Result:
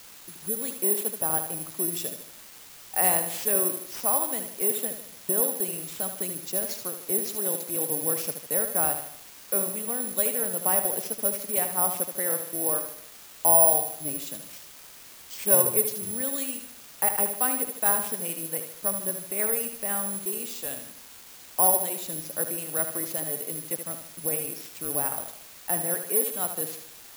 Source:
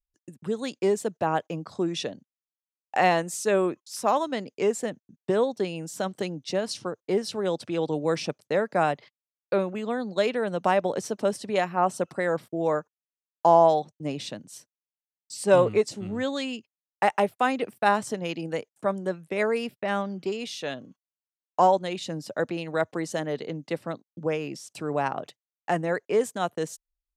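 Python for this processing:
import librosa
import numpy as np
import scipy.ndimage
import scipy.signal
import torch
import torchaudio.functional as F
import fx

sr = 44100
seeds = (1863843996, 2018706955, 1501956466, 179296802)

p1 = fx.quant_dither(x, sr, seeds[0], bits=6, dither='triangular')
p2 = x + (p1 * librosa.db_to_amplitude(-7.0))
p3 = fx.echo_feedback(p2, sr, ms=76, feedback_pct=47, wet_db=-8)
p4 = (np.kron(p3[::4], np.eye(4)[0]) * 4)[:len(p3)]
y = p4 * librosa.db_to_amplitude(-11.0)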